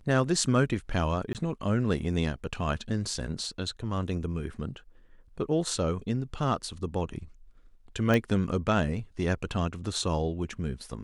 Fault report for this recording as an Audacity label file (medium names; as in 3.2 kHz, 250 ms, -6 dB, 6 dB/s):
1.330000	1.350000	dropout 18 ms
8.140000	8.140000	pop -13 dBFS